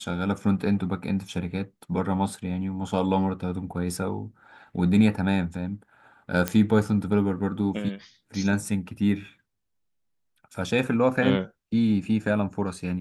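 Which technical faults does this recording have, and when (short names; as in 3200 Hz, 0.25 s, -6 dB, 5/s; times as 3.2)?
6.48 pop -9 dBFS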